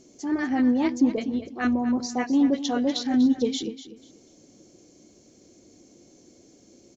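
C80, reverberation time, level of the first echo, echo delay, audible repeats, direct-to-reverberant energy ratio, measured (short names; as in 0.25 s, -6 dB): none, none, -13.0 dB, 0.244 s, 2, none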